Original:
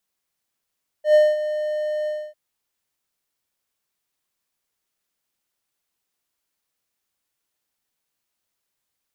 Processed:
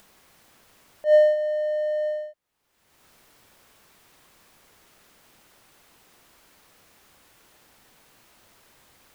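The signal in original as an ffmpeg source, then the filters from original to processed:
-f lavfi -i "aevalsrc='0.422*(1-4*abs(mod(607*t+0.25,1)-0.5))':duration=1.298:sample_rate=44100,afade=type=in:duration=0.104,afade=type=out:start_time=0.104:duration=0.217:silence=0.237,afade=type=out:start_time=1.03:duration=0.268"
-af "highshelf=frequency=3000:gain=-11,acompressor=mode=upward:threshold=-34dB:ratio=2.5"

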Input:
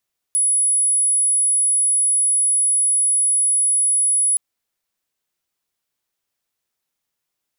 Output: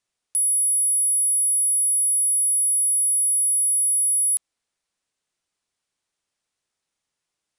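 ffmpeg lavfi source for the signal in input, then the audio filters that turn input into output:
-f lavfi -i "sine=frequency=10200:duration=4.02:sample_rate=44100,volume=4.06dB"
-af "aresample=22050,aresample=44100"

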